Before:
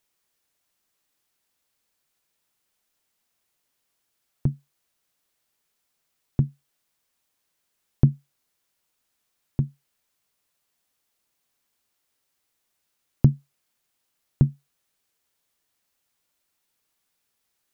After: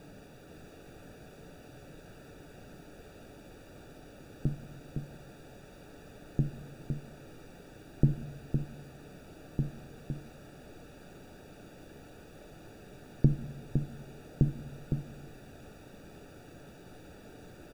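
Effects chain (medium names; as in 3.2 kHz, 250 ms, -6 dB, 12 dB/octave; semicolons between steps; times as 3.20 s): peaking EQ 100 Hz -14 dB 1.3 oct; word length cut 6-bit, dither triangular; boxcar filter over 42 samples; delay 510 ms -6 dB; on a send at -11.5 dB: reverberation RT60 0.75 s, pre-delay 7 ms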